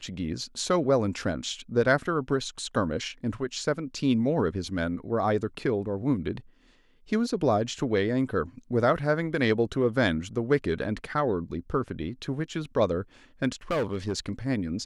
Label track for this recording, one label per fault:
13.710000	14.310000	clipped -23 dBFS

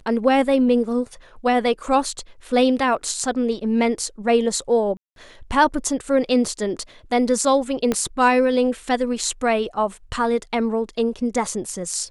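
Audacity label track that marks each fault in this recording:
4.970000	5.160000	dropout 192 ms
7.920000	7.920000	pop -8 dBFS

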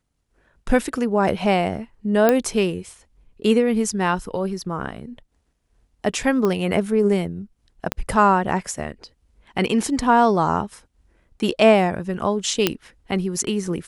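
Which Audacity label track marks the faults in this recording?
2.290000	2.290000	pop -4 dBFS
6.450000	6.450000	pop -11 dBFS
7.920000	7.920000	pop -6 dBFS
12.670000	12.670000	pop -2 dBFS

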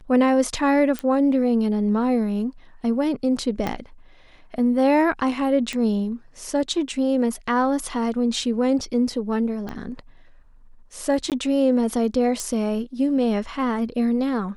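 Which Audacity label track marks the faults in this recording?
0.990000	0.990000	pop -12 dBFS
3.670000	3.670000	pop -12 dBFS
5.730000	5.730000	pop -15 dBFS
9.690000	9.690000	pop -19 dBFS
11.300000	11.320000	dropout 18 ms
12.400000	12.400000	pop -14 dBFS

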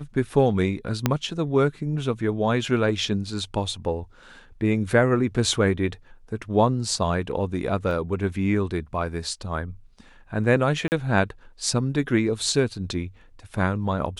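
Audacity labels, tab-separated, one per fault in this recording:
1.060000	1.060000	pop -5 dBFS
7.910000	7.910000	dropout 2.1 ms
10.880000	10.920000	dropout 39 ms

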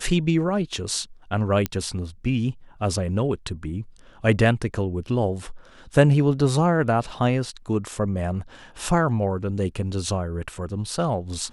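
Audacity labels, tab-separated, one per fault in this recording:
1.660000	1.660000	pop -9 dBFS

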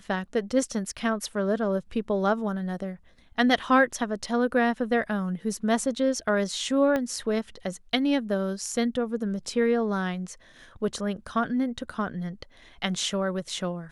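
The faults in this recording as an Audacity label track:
6.960000	6.960000	pop -15 dBFS

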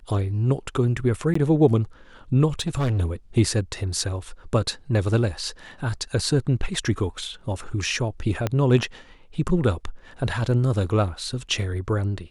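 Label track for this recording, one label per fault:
1.340000	1.350000	dropout 14 ms
2.600000	3.010000	clipped -19.5 dBFS
8.470000	8.470000	pop -10 dBFS

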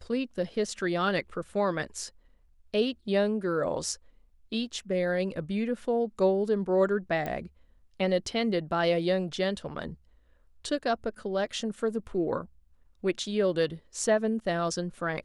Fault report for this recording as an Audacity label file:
7.260000	7.260000	pop -20 dBFS

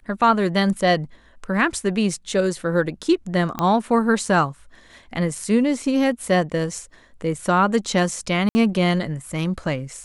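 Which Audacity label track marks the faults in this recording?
3.590000	3.590000	pop -10 dBFS
8.490000	8.550000	dropout 60 ms

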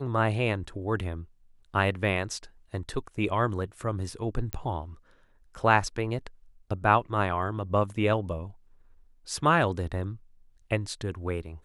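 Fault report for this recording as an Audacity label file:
4.530000	4.530000	pop -15 dBFS

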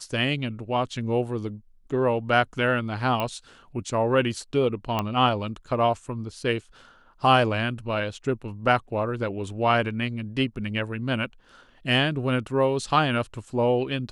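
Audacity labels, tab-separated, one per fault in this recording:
3.200000	3.200000	pop -14 dBFS
4.990000	4.990000	pop -12 dBFS

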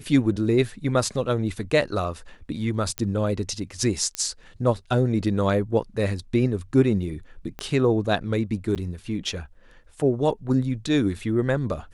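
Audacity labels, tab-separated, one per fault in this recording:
2.980000	2.980000	pop -11 dBFS
4.150000	4.150000	pop -12 dBFS
7.590000	7.590000	pop -18 dBFS
8.750000	8.760000	dropout 8.4 ms

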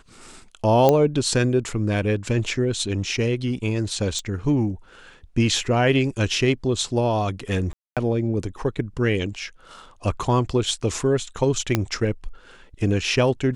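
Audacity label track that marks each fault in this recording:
0.890000	0.890000	pop -5 dBFS
4.190000	4.190000	pop -17 dBFS
7.730000	7.970000	dropout 237 ms
11.750000	11.750000	pop -5 dBFS

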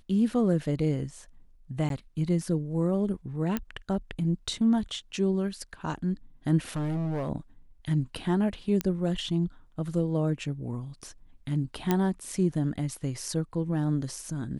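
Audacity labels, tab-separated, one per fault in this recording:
1.890000	1.900000	dropout 12 ms
3.570000	3.570000	pop -15 dBFS
6.760000	7.300000	clipped -27 dBFS
8.810000	8.810000	pop -13 dBFS
11.910000	11.910000	pop -11 dBFS

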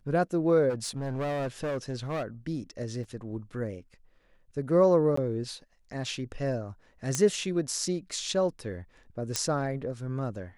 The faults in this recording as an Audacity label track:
0.690000	2.230000	clipped -28 dBFS
3.040000	3.040000	dropout 3.6 ms
5.160000	5.170000	dropout 14 ms
7.150000	7.150000	pop -13 dBFS
9.360000	9.360000	pop -11 dBFS

